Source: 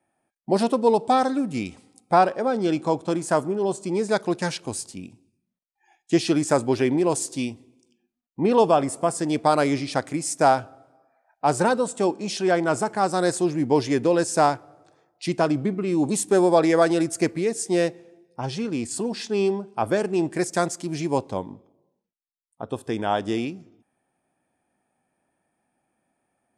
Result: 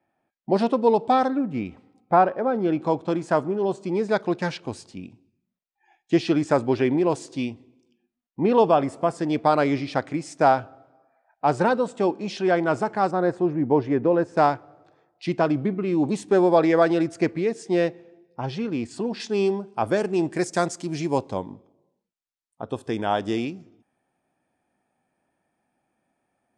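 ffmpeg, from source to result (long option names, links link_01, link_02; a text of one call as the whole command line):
ffmpeg -i in.wav -af "asetnsamples=nb_out_samples=441:pad=0,asendcmd='1.28 lowpass f 2000;2.81 lowpass f 3700;13.11 lowpass f 1500;14.37 lowpass f 3600;19.2 lowpass f 7500',lowpass=3800" out.wav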